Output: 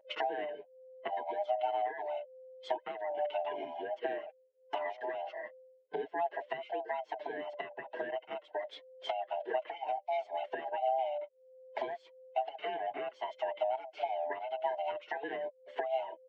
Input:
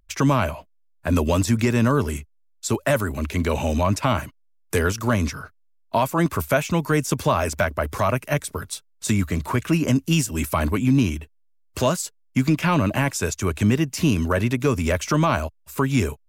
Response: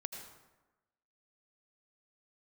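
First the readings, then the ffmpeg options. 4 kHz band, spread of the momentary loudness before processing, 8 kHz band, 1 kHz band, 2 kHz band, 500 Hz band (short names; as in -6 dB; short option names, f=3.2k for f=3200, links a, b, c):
-16.0 dB, 8 LU, under -40 dB, -8.5 dB, -16.5 dB, -10.0 dB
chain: -filter_complex "[0:a]afftfilt=real='real(if(lt(b,1008),b+24*(1-2*mod(floor(b/24),2)),b),0)':imag='imag(if(lt(b,1008),b+24*(1-2*mod(floor(b/24),2)),b),0)':win_size=2048:overlap=0.75,tiltshelf=f=1.2k:g=9.5,acompressor=threshold=-29dB:ratio=6,highpass=f=350:w=0.5412,highpass=f=350:w=1.3066,equalizer=f=1.2k:t=q:w=4:g=-9,equalizer=f=2k:t=q:w=4:g=4,equalizer=f=3.1k:t=q:w=4:g=8,lowpass=f=3.4k:w=0.5412,lowpass=f=3.4k:w=1.3066,asplit=2[a][b];[b]adelay=5.8,afreqshift=-0.74[c];[a][c]amix=inputs=2:normalize=1"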